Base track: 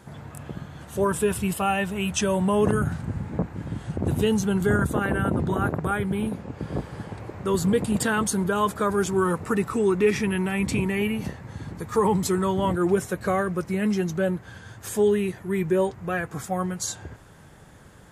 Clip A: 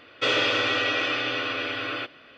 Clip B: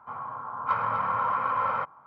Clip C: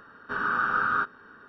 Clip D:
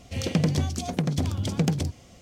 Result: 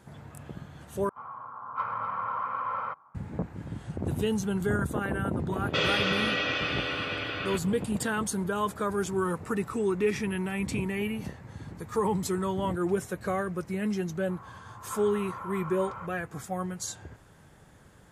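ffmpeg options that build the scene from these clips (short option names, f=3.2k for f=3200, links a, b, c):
-filter_complex "[2:a]asplit=2[a][b];[0:a]volume=-6dB[c];[a]equalizer=f=1.2k:t=o:w=0.34:g=4.5[d];[c]asplit=2[e][f];[e]atrim=end=1.094[g];[d]atrim=end=2.06,asetpts=PTS-STARTPTS,volume=-7.5dB[h];[f]atrim=start=3.146[i];[1:a]atrim=end=2.37,asetpts=PTS-STARTPTS,volume=-4dB,afade=t=in:d=0.004:c=hsin,afade=t=out:st=2.366:d=0.004:c=hsin,adelay=5520[j];[b]atrim=end=2.06,asetpts=PTS-STARTPTS,volume=-13dB,afade=t=in:d=0.004:c=hsin,afade=t=out:st=2.056:d=0.004:c=hsin,adelay=14220[k];[g][h]acrossfade=d=0.004:c1=hsin:c2=hsin[l];[l][i]acrossfade=d=0.004:c1=hsin:c2=hsin[m];[m][j][k]amix=inputs=3:normalize=0"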